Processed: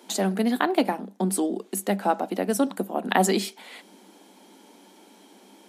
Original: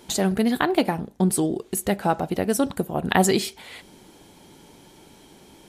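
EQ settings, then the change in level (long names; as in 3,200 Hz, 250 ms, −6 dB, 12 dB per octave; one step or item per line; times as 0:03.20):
Chebyshev high-pass with heavy ripple 190 Hz, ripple 3 dB
0.0 dB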